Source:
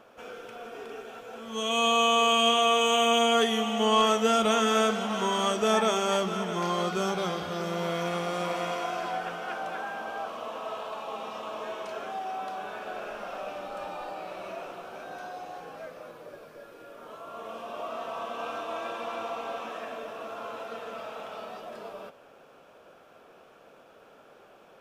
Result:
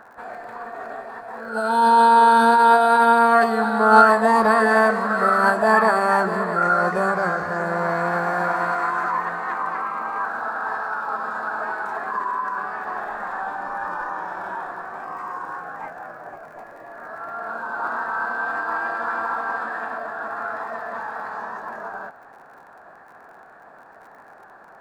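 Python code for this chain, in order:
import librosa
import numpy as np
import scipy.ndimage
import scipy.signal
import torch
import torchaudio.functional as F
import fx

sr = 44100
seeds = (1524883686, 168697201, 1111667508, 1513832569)

y = fx.high_shelf_res(x, sr, hz=1600.0, db=-11.5, q=3.0)
y = fx.dmg_crackle(y, sr, seeds[0], per_s=46.0, level_db=-51.0)
y = fx.formant_shift(y, sr, semitones=5)
y = y * 10.0 ** (6.0 / 20.0)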